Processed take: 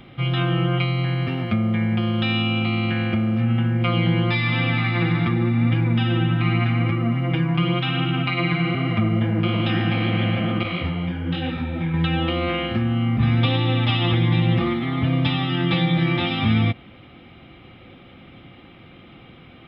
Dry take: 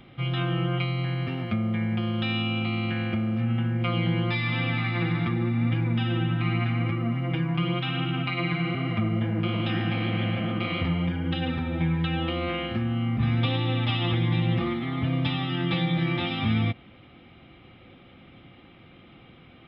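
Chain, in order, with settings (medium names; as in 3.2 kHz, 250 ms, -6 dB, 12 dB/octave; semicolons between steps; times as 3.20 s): 10.63–11.94 s: detune thickener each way 42 cents; trim +5.5 dB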